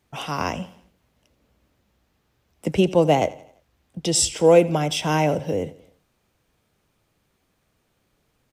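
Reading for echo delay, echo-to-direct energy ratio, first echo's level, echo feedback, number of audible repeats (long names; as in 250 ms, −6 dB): 85 ms, −18.0 dB, −19.0 dB, 46%, 3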